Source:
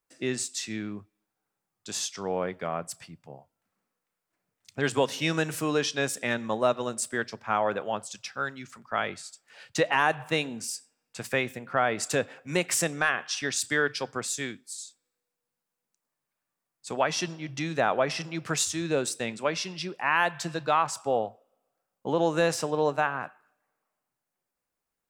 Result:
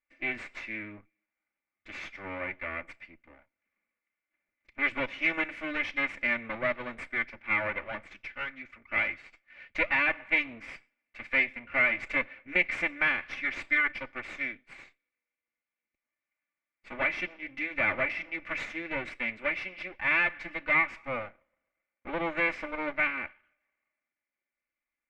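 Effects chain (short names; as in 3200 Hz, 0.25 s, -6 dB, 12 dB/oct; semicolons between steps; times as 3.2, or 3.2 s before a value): minimum comb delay 3.4 ms; synth low-pass 2200 Hz, resonance Q 8.5; notch 890 Hz, Q 12; gain -7 dB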